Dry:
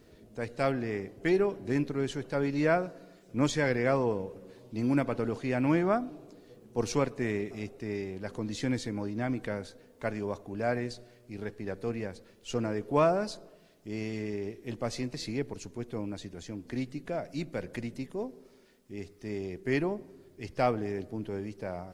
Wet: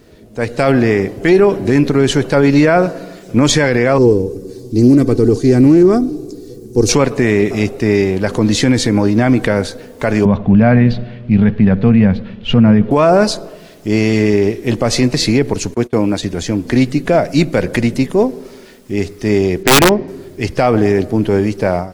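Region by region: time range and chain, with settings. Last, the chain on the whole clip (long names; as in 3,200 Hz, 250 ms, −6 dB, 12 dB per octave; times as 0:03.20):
0:03.98–0:06.89: flat-topped bell 1,400 Hz −16 dB 2.9 octaves + comb filter 2.6 ms, depth 45% + highs frequency-modulated by the lows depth 0.13 ms
0:10.25–0:12.91: Chebyshev low-pass filter 3,300 Hz, order 3 + low shelf with overshoot 260 Hz +7 dB, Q 3
0:15.74–0:16.23: noise gate −45 dBFS, range −24 dB + high-pass filter 130 Hz 6 dB per octave
0:19.63–0:20.08: low-pass filter 5,000 Hz 24 dB per octave + wrap-around overflow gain 23.5 dB
whole clip: automatic gain control gain up to 11 dB; boost into a limiter +13 dB; level −1 dB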